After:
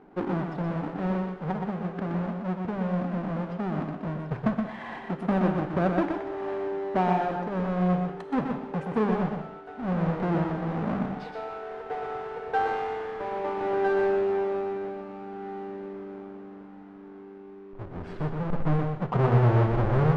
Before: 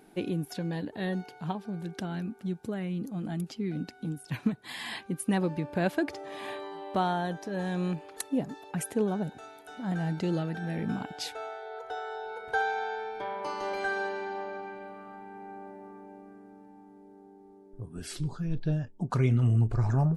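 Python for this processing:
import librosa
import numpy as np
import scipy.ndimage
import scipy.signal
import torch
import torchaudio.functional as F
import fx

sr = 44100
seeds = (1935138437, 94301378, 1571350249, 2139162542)

y = fx.halfwave_hold(x, sr)
y = scipy.signal.sosfilt(scipy.signal.butter(2, 1200.0, 'lowpass', fs=sr, output='sos'), y)
y = fx.low_shelf(y, sr, hz=340.0, db=-5.0)
y = y + 10.0 ** (-5.0 / 20.0) * np.pad(y, (int(122 * sr / 1000.0), 0))[:len(y)]
y = fx.rev_gated(y, sr, seeds[0], gate_ms=240, shape='flat', drr_db=7.5)
y = F.gain(torch.from_numpy(y), 1.5).numpy()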